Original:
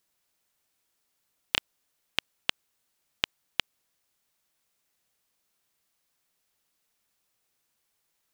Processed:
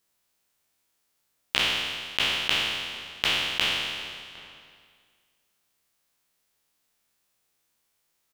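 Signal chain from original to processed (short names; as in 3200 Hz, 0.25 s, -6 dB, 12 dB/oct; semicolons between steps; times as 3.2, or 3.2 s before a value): spectral trails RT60 1.82 s; outdoor echo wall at 130 m, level -18 dB; gain -1 dB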